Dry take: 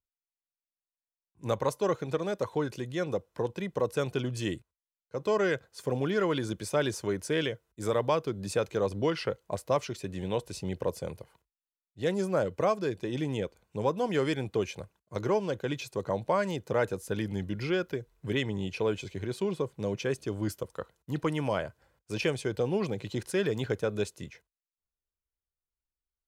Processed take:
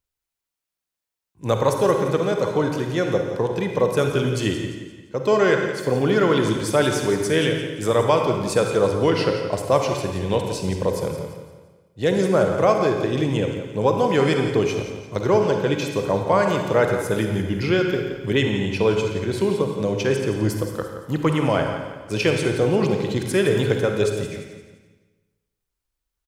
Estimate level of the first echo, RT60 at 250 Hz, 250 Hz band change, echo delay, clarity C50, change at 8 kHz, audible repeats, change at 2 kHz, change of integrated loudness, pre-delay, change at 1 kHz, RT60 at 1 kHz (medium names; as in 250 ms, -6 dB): -11.0 dB, 1.4 s, +10.5 dB, 172 ms, 3.5 dB, +10.0 dB, 4, +10.5 dB, +10.0 dB, 39 ms, +10.5 dB, 1.3 s